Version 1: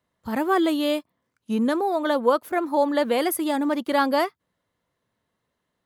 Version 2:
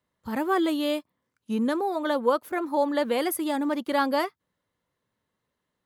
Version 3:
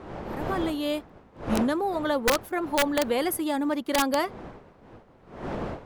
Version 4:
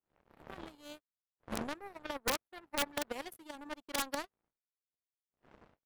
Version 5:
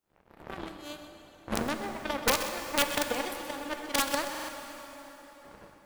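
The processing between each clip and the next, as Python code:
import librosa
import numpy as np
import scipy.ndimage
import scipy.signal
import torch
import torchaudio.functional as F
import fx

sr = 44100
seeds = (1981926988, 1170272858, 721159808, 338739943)

y1 = fx.notch(x, sr, hz=680.0, q=13.0)
y1 = y1 * librosa.db_to_amplitude(-3.0)
y2 = fx.fade_in_head(y1, sr, length_s=1.08)
y2 = fx.dmg_wind(y2, sr, seeds[0], corner_hz=630.0, level_db=-38.0)
y2 = (np.mod(10.0 ** (14.5 / 20.0) * y2 + 1.0, 2.0) - 1.0) / 10.0 ** (14.5 / 20.0)
y3 = fx.power_curve(y2, sr, exponent=3.0)
y3 = y3 * librosa.db_to_amplitude(-6.5)
y4 = y3 + 10.0 ** (-12.0 / 20.0) * np.pad(y3, (int(128 * sr / 1000.0), 0))[:len(y3)]
y4 = fx.rev_plate(y4, sr, seeds[1], rt60_s=4.5, hf_ratio=0.75, predelay_ms=0, drr_db=5.5)
y4 = fx.buffer_glitch(y4, sr, at_s=(4.3,), block=2048, repeats=3)
y4 = y4 * librosa.db_to_amplitude(7.5)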